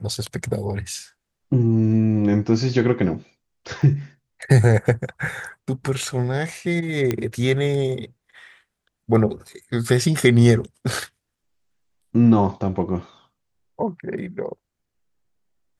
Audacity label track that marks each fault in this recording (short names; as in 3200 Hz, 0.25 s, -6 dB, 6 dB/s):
3.820000	3.820000	gap 4.1 ms
7.110000	7.110000	pop -9 dBFS